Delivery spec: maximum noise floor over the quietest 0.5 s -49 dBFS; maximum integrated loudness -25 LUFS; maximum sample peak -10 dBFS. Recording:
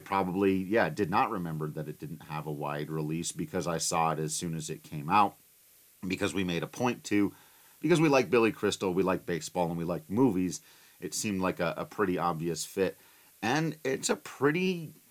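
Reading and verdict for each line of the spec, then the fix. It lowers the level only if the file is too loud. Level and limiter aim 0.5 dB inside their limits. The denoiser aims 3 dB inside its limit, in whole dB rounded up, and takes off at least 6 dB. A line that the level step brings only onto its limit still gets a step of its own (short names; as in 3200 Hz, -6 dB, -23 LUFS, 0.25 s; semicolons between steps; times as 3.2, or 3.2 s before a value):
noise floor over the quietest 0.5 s -61 dBFS: OK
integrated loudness -30.5 LUFS: OK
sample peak -11.5 dBFS: OK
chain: none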